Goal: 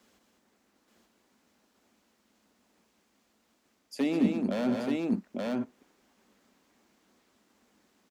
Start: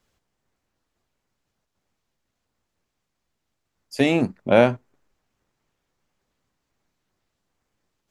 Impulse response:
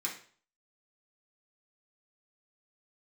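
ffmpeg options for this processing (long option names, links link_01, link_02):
-filter_complex "[0:a]aeval=exprs='0.282*(abs(mod(val(0)/0.282+3,4)-2)-1)':channel_layout=same,areverse,acompressor=threshold=-33dB:ratio=6,areverse,highpass=49,asplit=2[link_01][link_02];[link_02]aecho=0:1:124|203|878:0.282|0.531|0.708[link_03];[link_01][link_03]amix=inputs=2:normalize=0,acrossover=split=360[link_04][link_05];[link_05]acompressor=threshold=-47dB:ratio=2[link_06];[link_04][link_06]amix=inputs=2:normalize=0,lowshelf=frequency=170:width_type=q:width=3:gain=-8.5,volume=6.5dB"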